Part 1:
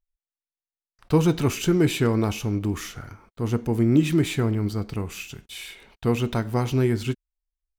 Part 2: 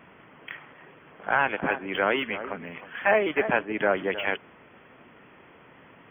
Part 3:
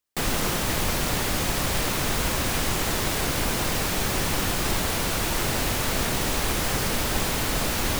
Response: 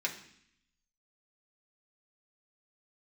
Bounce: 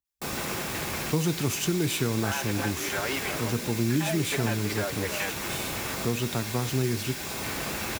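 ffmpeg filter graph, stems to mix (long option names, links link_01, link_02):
-filter_complex "[0:a]volume=-4dB,asplit=2[link_01][link_02];[1:a]asplit=2[link_03][link_04];[link_04]adelay=5.3,afreqshift=0.58[link_05];[link_03][link_05]amix=inputs=2:normalize=1,adelay=950,volume=0.5dB[link_06];[2:a]adelay=50,volume=-8dB,asplit=2[link_07][link_08];[link_08]volume=-7.5dB[link_09];[link_02]apad=whole_len=354609[link_10];[link_07][link_10]sidechaincompress=threshold=-39dB:ratio=8:attack=40:release=309[link_11];[link_06][link_11]amix=inputs=2:normalize=0,afwtdn=0.0141,alimiter=limit=-20.5dB:level=0:latency=1:release=282,volume=0dB[link_12];[3:a]atrim=start_sample=2205[link_13];[link_09][link_13]afir=irnorm=-1:irlink=0[link_14];[link_01][link_12][link_14]amix=inputs=3:normalize=0,highpass=73,highshelf=frequency=4500:gain=8,acrossover=split=160|3000[link_15][link_16][link_17];[link_16]acompressor=threshold=-25dB:ratio=6[link_18];[link_15][link_18][link_17]amix=inputs=3:normalize=0"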